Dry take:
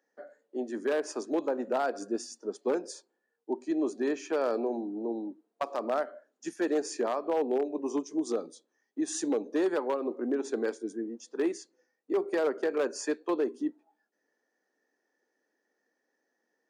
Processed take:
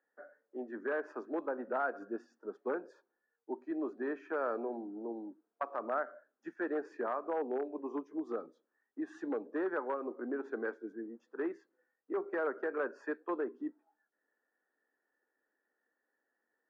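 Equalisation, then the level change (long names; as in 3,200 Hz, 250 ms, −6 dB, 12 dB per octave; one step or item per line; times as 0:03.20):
high-pass filter 150 Hz
low-pass with resonance 1,500 Hz, resonance Q 2.9
−8.0 dB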